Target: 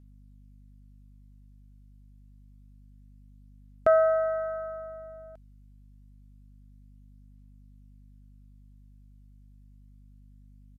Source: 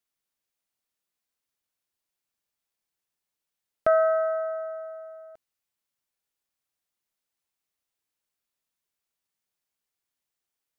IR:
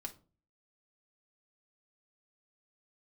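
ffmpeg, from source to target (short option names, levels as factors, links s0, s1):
-af "aeval=exprs='val(0)+0.00224*(sin(2*PI*50*n/s)+sin(2*PI*2*50*n/s)/2+sin(2*PI*3*50*n/s)/3+sin(2*PI*4*50*n/s)/4+sin(2*PI*5*50*n/s)/5)':c=same,aphaser=in_gain=1:out_gain=1:delay=1.4:decay=0.21:speed=0.27:type=triangular,aresample=32000,aresample=44100,volume=0.891"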